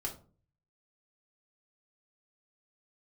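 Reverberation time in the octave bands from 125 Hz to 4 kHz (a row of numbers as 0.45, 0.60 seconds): 0.80, 0.55, 0.45, 0.35, 0.25, 0.20 seconds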